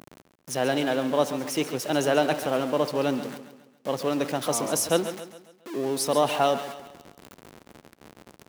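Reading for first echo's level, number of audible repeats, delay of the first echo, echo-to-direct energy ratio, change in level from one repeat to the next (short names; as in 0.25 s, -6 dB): -11.5 dB, 4, 0.137 s, -10.5 dB, -7.0 dB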